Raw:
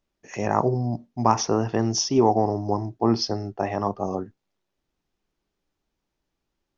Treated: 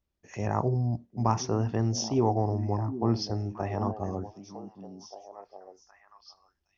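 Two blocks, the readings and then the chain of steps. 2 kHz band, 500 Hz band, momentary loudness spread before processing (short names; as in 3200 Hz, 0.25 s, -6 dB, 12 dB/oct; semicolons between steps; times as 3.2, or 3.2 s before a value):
-8.0 dB, -7.0 dB, 10 LU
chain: bell 77 Hz +14.5 dB 1.4 oct; delay with a stepping band-pass 0.765 s, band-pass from 230 Hz, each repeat 1.4 oct, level -7 dB; gain -8 dB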